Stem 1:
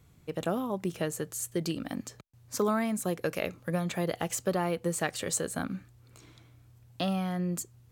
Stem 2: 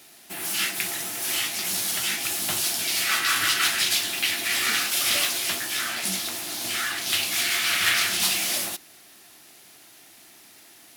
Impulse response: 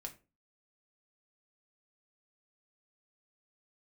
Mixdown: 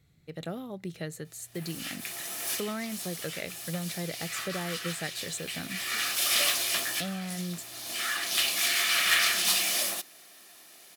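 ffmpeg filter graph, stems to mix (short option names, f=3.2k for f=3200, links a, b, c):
-filter_complex "[0:a]equalizer=f=160:t=o:w=0.33:g=6,equalizer=f=1k:t=o:w=0.33:g=-9,equalizer=f=2k:t=o:w=0.33:g=8,equalizer=f=4k:t=o:w=0.33:g=10,volume=-7dB,asplit=2[a][b];[1:a]highpass=190,aecho=1:1:1.7:0.3,adelay=1250,volume=-2.5dB[c];[b]apad=whole_len=538751[d];[c][d]sidechaincompress=threshold=-44dB:ratio=10:attack=24:release=763[e];[a][e]amix=inputs=2:normalize=0"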